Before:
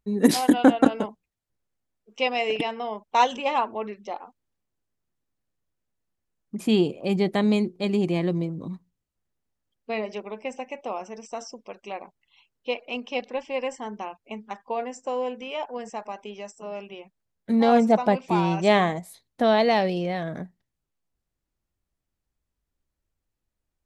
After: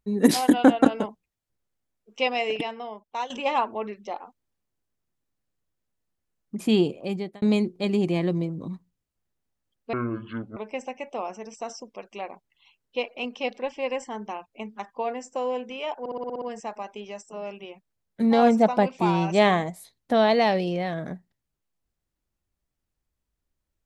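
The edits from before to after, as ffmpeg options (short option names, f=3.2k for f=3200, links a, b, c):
-filter_complex "[0:a]asplit=12[a][b][c][d][e][f][g][h][i][j][k][l];[a]atrim=end=3.3,asetpts=PTS-STARTPTS,afade=t=out:st=2.29:d=1.01:silence=0.199526[m];[b]atrim=start=3.3:end=7.42,asetpts=PTS-STARTPTS,afade=t=in:d=0.004:c=hsin:silence=0.199526,afade=t=out:st=3.57:d=0.55[n];[c]atrim=start=7.42:end=9.934,asetpts=PTS-STARTPTS,afade=t=in:d=0.004:c=hsin[o];[d]atrim=start=9.93:end=10.28,asetpts=PTS-STARTPTS,asetrate=24255,aresample=44100[p];[e]atrim=start=10.276:end=15.772[q];[f]atrim=start=15.708:end=15.772[r];[g]atrim=start=15.708:end=15.772[s];[h]atrim=start=15.708:end=15.772[t];[i]atrim=start=15.708:end=15.772[u];[j]atrim=start=15.708:end=15.772[v];[k]atrim=start=15.708:end=15.772[w];[l]atrim=start=15.708[x];[m][n][o]concat=n=3:v=0:a=1[y];[y][p]acrossfade=d=0.004:c1=hsin:c2=hsin[z];[z][q]acrossfade=d=0.004:c1=hsin:c2=hsin[aa];[aa][r]acrossfade=d=0.004:c1=hsin:c2=hsin[ab];[ab][s]acrossfade=d=0.004:c1=hsin:c2=hsin[ac];[ac][t]acrossfade=d=0.004:c1=hsin:c2=hsin[ad];[ad][u]acrossfade=d=0.004:c1=hsin:c2=hsin[ae];[ae][v]acrossfade=d=0.004:c1=hsin:c2=hsin[af];[af][w]acrossfade=d=0.004:c1=hsin:c2=hsin[ag];[ag][x]acrossfade=d=0.004:c1=hsin:c2=hsin"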